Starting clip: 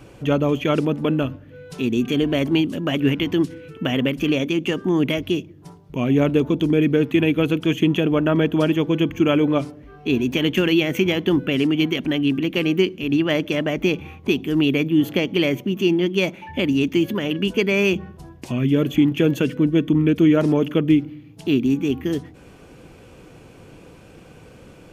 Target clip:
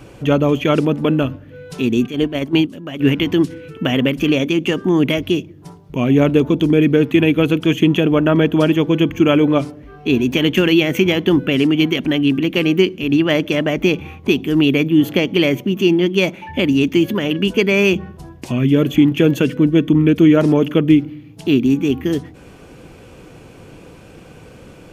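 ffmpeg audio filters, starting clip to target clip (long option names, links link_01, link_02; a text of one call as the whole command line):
ffmpeg -i in.wav -filter_complex "[0:a]asplit=3[link_01][link_02][link_03];[link_01]afade=type=out:start_time=2.06:duration=0.02[link_04];[link_02]agate=range=-11dB:threshold=-18dB:ratio=16:detection=peak,afade=type=in:start_time=2.06:duration=0.02,afade=type=out:start_time=2.99:duration=0.02[link_05];[link_03]afade=type=in:start_time=2.99:duration=0.02[link_06];[link_04][link_05][link_06]amix=inputs=3:normalize=0,volume=4.5dB" out.wav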